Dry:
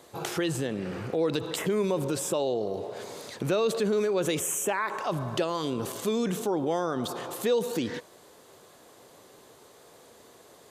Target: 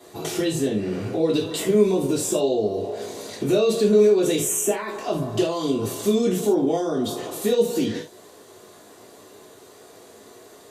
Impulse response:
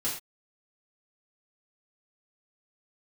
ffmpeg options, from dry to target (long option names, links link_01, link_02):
-filter_complex "[0:a]bandreject=frequency=60:width_type=h:width=6,bandreject=frequency=120:width_type=h:width=6,acrossover=split=850|2200[link_01][link_02][link_03];[link_02]acompressor=threshold=-54dB:ratio=6[link_04];[link_01][link_04][link_03]amix=inputs=3:normalize=0[link_05];[1:a]atrim=start_sample=2205,asetrate=61740,aresample=44100[link_06];[link_05][link_06]afir=irnorm=-1:irlink=0,volume=3dB"